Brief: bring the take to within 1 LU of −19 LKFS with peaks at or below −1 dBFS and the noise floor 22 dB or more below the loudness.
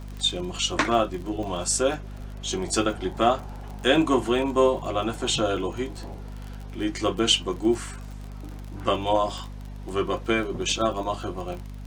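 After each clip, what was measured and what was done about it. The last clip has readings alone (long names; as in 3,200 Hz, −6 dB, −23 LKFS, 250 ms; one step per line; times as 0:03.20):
crackle rate 32 per second; mains hum 50 Hz; hum harmonics up to 250 Hz; level of the hum −35 dBFS; integrated loudness −25.5 LKFS; sample peak −6.5 dBFS; target loudness −19.0 LKFS
→ click removal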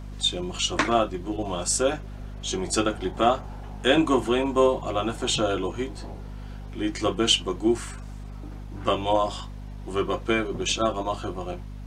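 crackle rate 0 per second; mains hum 50 Hz; hum harmonics up to 250 Hz; level of the hum −35 dBFS
→ hum removal 50 Hz, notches 5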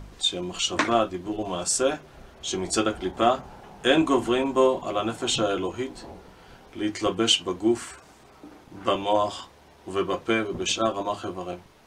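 mains hum none found; integrated loudness −25.5 LKFS; sample peak −6.0 dBFS; target loudness −19.0 LKFS
→ level +6.5 dB
brickwall limiter −1 dBFS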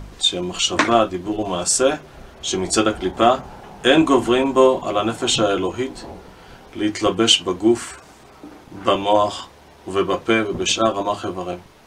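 integrated loudness −19.0 LKFS; sample peak −1.0 dBFS; background noise floor −46 dBFS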